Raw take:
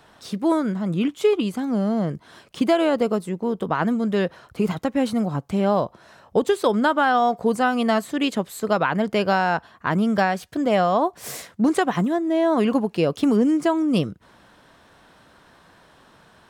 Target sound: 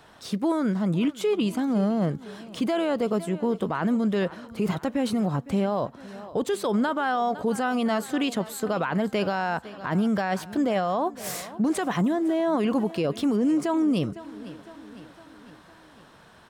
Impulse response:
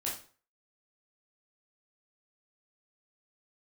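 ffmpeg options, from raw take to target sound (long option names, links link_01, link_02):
-af "aecho=1:1:507|1014|1521|2028:0.0841|0.0471|0.0264|0.0148,alimiter=limit=-17dB:level=0:latency=1:release=15"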